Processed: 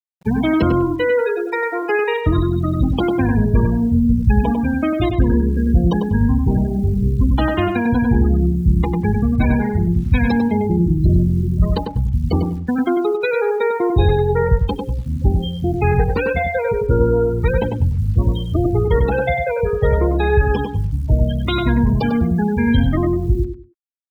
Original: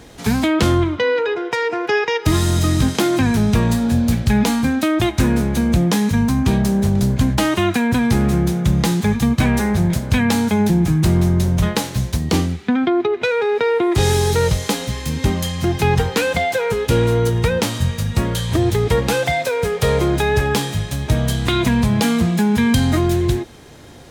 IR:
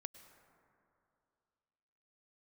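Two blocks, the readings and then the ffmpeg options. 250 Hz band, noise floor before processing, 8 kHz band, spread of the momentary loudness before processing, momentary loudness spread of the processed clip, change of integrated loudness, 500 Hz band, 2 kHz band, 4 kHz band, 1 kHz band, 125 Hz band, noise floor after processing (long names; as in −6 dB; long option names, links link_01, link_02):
−0.5 dB, −33 dBFS, below −25 dB, 5 LU, 4 LU, 0.0 dB, +0.5 dB, −2.5 dB, −9.5 dB, −1.0 dB, +0.5 dB, −27 dBFS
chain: -filter_complex "[0:a]highpass=frequency=47:poles=1,afftfilt=real='re*gte(hypot(re,im),0.2)':imag='im*gte(hypot(re,im),0.2)':win_size=1024:overlap=0.75,asubboost=boost=5:cutoff=63,acrusher=bits=9:dc=4:mix=0:aa=0.000001,asplit=2[link_01][link_02];[link_02]adelay=98,lowpass=frequency=2300:poles=1,volume=-4dB,asplit=2[link_03][link_04];[link_04]adelay=98,lowpass=frequency=2300:poles=1,volume=0.25,asplit=2[link_05][link_06];[link_06]adelay=98,lowpass=frequency=2300:poles=1,volume=0.25[link_07];[link_03][link_05][link_07]amix=inputs=3:normalize=0[link_08];[link_01][link_08]amix=inputs=2:normalize=0,adynamicequalizer=threshold=0.0224:dfrequency=2100:dqfactor=0.7:tfrequency=2100:tqfactor=0.7:attack=5:release=100:ratio=0.375:range=2:mode=cutabove:tftype=highshelf"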